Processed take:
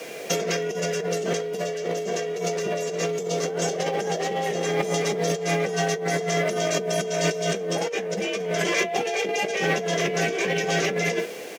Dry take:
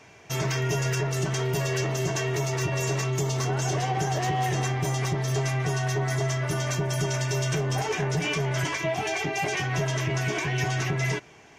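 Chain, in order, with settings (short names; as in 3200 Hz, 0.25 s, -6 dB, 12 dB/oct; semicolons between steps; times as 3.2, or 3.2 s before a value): in parallel at -4 dB: requantised 8-bit, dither triangular; on the sum: weighting filter A; early reflections 20 ms -12.5 dB, 67 ms -16 dB; frequency shift +38 Hz; resonant low shelf 700 Hz +8.5 dB, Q 3; negative-ratio compressor -27 dBFS, ratio -1; gain +1 dB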